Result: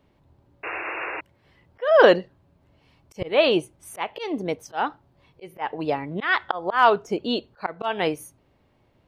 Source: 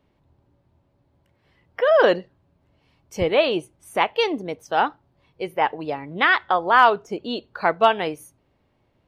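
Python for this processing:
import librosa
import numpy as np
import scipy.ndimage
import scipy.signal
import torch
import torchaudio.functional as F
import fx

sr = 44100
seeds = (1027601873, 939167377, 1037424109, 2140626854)

y = fx.auto_swell(x, sr, attack_ms=239.0)
y = fx.spec_paint(y, sr, seeds[0], shape='noise', start_s=0.63, length_s=0.58, low_hz=300.0, high_hz=2800.0, level_db=-34.0)
y = F.gain(torch.from_numpy(y), 3.0).numpy()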